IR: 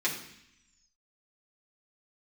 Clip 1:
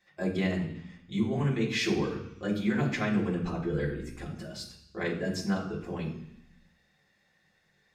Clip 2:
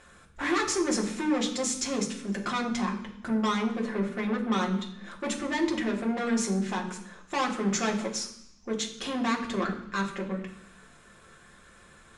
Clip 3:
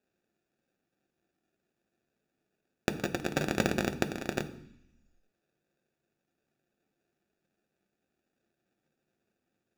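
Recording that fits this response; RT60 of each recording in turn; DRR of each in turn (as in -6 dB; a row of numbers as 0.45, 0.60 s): 1; 0.75, 0.75, 0.75 s; -6.0, -1.5, 7.5 dB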